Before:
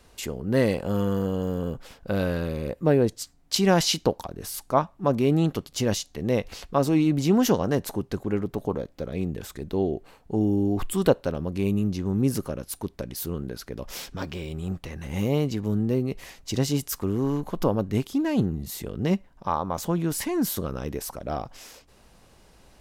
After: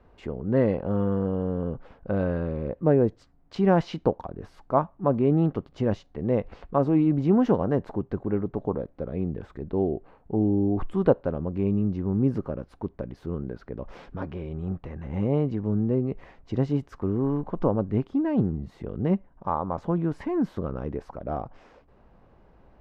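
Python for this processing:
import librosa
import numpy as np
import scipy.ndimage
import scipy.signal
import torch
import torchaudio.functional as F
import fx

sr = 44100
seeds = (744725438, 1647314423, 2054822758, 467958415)

y = scipy.signal.sosfilt(scipy.signal.butter(2, 1300.0, 'lowpass', fs=sr, output='sos'), x)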